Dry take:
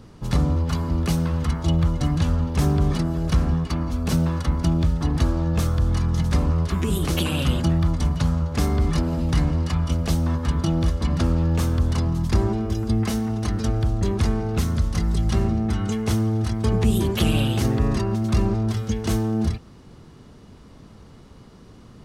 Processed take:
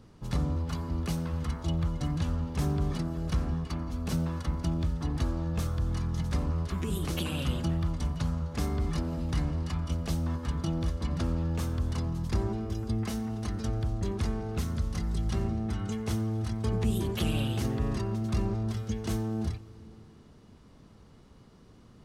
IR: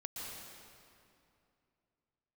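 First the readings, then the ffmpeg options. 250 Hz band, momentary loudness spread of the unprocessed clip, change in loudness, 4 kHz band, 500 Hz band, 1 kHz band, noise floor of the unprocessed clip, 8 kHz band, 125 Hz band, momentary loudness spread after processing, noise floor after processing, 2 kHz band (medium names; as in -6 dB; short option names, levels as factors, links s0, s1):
-9.0 dB, 3 LU, -9.0 dB, -9.0 dB, -9.0 dB, -9.0 dB, -46 dBFS, -9.0 dB, -9.0 dB, 3 LU, -55 dBFS, -9.0 dB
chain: -filter_complex "[0:a]asplit=2[s0][s1];[1:a]atrim=start_sample=2205,adelay=89[s2];[s1][s2]afir=irnorm=-1:irlink=0,volume=0.126[s3];[s0][s3]amix=inputs=2:normalize=0,volume=0.355"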